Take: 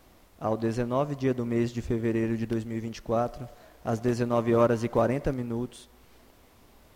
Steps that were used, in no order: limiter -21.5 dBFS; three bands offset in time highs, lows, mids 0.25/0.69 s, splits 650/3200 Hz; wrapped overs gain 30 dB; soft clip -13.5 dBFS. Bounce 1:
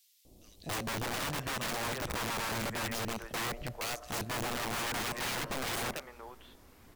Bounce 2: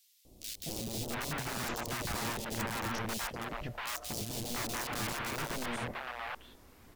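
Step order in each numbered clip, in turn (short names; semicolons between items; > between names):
three bands offset in time > limiter > wrapped overs > soft clip; soft clip > limiter > wrapped overs > three bands offset in time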